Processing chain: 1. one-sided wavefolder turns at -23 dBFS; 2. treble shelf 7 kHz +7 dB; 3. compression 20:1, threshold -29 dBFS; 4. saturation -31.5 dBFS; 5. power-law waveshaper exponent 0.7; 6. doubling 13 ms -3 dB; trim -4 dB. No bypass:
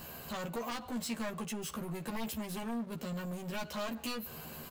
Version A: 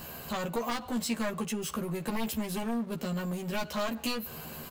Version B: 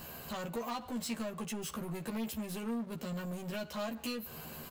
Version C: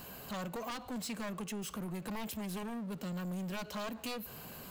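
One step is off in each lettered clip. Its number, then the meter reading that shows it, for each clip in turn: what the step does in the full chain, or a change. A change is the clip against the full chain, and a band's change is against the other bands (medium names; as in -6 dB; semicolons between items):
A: 4, distortion -13 dB; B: 1, distortion -3 dB; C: 6, 125 Hz band +2.0 dB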